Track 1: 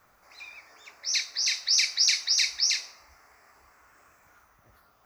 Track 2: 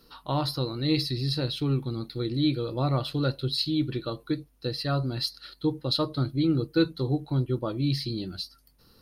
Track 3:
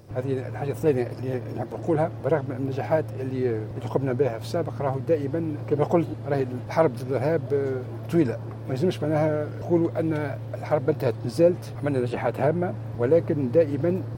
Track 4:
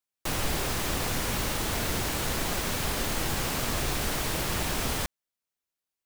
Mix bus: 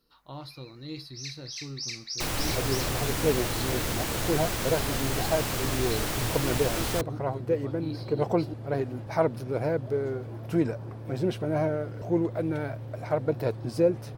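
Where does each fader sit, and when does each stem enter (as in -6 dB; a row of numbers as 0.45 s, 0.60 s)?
-13.0 dB, -14.0 dB, -4.0 dB, -1.0 dB; 0.10 s, 0.00 s, 2.40 s, 1.95 s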